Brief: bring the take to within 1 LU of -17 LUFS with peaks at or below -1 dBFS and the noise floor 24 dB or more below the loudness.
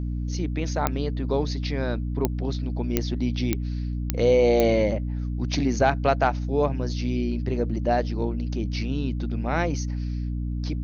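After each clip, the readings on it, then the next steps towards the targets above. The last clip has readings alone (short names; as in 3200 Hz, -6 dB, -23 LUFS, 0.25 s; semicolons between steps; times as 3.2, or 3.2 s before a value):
clicks 6; hum 60 Hz; harmonics up to 300 Hz; hum level -25 dBFS; loudness -25.5 LUFS; peak -5.5 dBFS; loudness target -17.0 LUFS
-> de-click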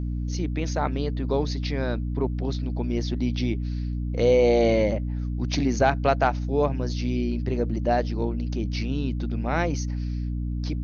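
clicks 0; hum 60 Hz; harmonics up to 300 Hz; hum level -25 dBFS
-> de-hum 60 Hz, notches 5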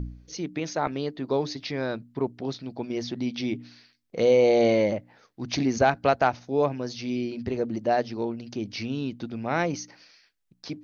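hum none; loudness -27.0 LUFS; peak -8.0 dBFS; loudness target -17.0 LUFS
-> gain +10 dB; limiter -1 dBFS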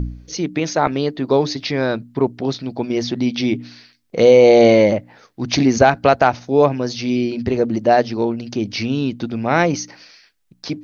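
loudness -17.5 LUFS; peak -1.0 dBFS; noise floor -58 dBFS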